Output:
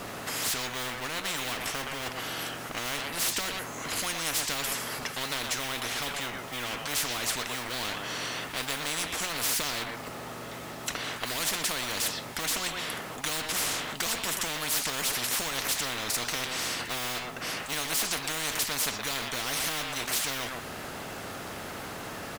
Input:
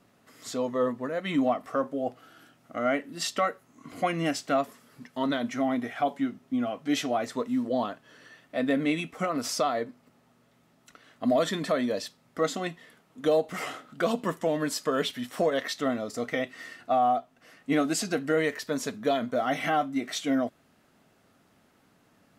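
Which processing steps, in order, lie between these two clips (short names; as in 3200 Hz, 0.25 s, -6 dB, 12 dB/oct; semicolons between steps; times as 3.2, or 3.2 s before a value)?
G.711 law mismatch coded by mu; speakerphone echo 0.12 s, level -13 dB; spectral compressor 10:1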